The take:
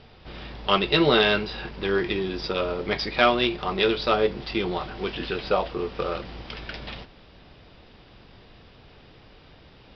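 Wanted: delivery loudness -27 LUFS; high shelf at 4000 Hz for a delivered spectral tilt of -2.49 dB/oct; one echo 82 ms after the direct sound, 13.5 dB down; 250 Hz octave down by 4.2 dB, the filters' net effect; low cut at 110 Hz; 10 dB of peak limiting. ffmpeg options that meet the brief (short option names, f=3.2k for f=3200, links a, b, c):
-af "highpass=110,equalizer=f=250:t=o:g=-6.5,highshelf=f=4k:g=-8,alimiter=limit=-16dB:level=0:latency=1,aecho=1:1:82:0.211,volume=3dB"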